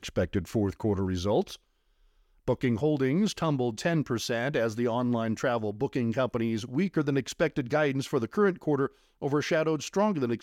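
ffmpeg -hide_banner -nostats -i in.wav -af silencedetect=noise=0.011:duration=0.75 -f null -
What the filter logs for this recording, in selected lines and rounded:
silence_start: 1.55
silence_end: 2.48 | silence_duration: 0.92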